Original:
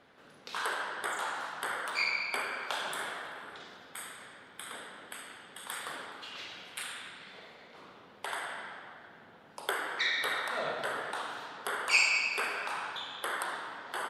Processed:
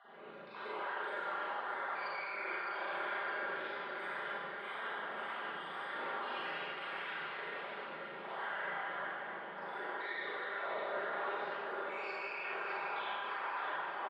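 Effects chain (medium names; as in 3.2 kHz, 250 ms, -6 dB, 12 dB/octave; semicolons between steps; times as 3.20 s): random holes in the spectrogram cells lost 38%; high-pass 420 Hz 12 dB/octave; treble shelf 5.2 kHz -10.5 dB; comb 4.9 ms, depth 43%; reverse; compression, threshold -45 dBFS, peak gain reduction 18.5 dB; reverse; peak limiter -40.5 dBFS, peak gain reduction 7.5 dB; distance through air 410 m; on a send: echo whose repeats swap between lows and highs 305 ms, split 980 Hz, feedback 73%, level -4.5 dB; on the sum: Schroeder reverb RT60 1.2 s, combs from 33 ms, DRR -7.5 dB; frequency shift -25 Hz; trim +4.5 dB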